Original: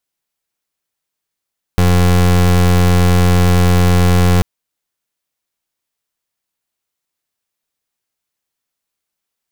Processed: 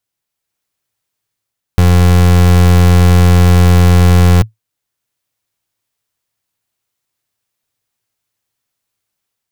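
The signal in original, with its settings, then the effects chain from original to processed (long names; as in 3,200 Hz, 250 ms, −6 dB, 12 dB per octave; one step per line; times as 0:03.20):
pulse wave 89 Hz, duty 29% −10 dBFS 2.64 s
parametric band 110 Hz +12.5 dB 0.41 octaves
automatic gain control gain up to 4 dB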